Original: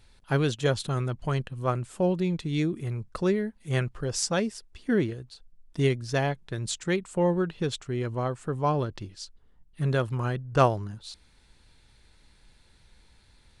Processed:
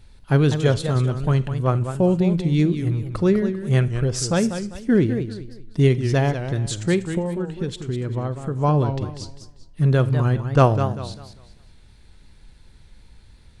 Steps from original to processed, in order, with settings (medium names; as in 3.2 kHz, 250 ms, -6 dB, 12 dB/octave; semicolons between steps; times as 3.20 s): bass shelf 360 Hz +8.5 dB; 7.09–8.59 s: compression, threshold -24 dBFS, peak gain reduction 9.5 dB; on a send at -17 dB: reverberation RT60 0.35 s, pre-delay 36 ms; on the sum: modulated delay 197 ms, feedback 31%, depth 178 cents, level -9 dB; trim +2 dB